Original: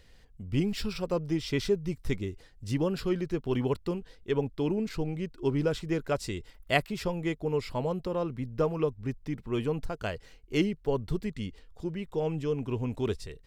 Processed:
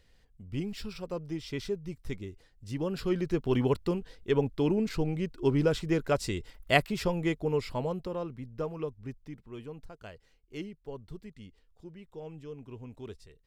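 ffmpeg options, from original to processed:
ffmpeg -i in.wav -af "volume=2dB,afade=type=in:start_time=2.72:duration=0.61:silence=0.375837,afade=type=out:start_time=7.21:duration=1.21:silence=0.354813,afade=type=out:start_time=9.07:duration=0.46:silence=0.501187" out.wav

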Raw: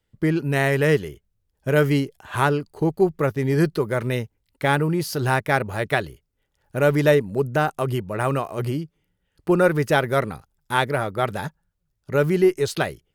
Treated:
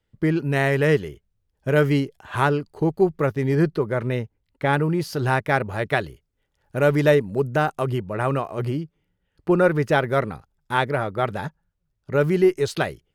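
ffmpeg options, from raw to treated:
ffmpeg -i in.wav -af "asetnsamples=nb_out_samples=441:pad=0,asendcmd='3.55 lowpass f 2100;4.73 lowpass f 4100;5.95 lowpass f 6600;7.88 lowpass f 3300;12.21 lowpass f 6300',lowpass=frequency=5100:poles=1" out.wav

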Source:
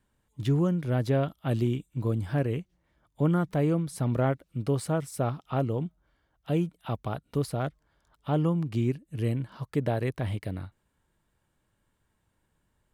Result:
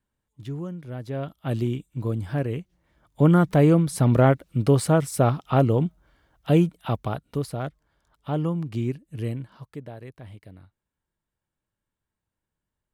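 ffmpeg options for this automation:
ffmpeg -i in.wav -af "volume=8.5dB,afade=type=in:start_time=1.07:duration=0.42:silence=0.354813,afade=type=in:start_time=2.59:duration=0.84:silence=0.421697,afade=type=out:start_time=6.57:duration=0.86:silence=0.375837,afade=type=out:start_time=9.18:duration=0.67:silence=0.251189" out.wav

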